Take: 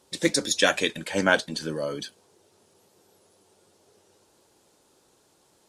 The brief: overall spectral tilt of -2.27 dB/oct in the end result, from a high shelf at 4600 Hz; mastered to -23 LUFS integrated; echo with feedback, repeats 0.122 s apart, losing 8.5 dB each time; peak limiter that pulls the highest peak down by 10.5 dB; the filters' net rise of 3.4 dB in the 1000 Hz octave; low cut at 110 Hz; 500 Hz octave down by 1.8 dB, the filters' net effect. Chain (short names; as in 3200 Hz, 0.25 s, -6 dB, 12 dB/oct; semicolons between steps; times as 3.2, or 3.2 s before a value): HPF 110 Hz; bell 500 Hz -4 dB; bell 1000 Hz +6 dB; high shelf 4600 Hz +4 dB; limiter -14 dBFS; feedback echo 0.122 s, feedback 38%, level -8.5 dB; gain +4.5 dB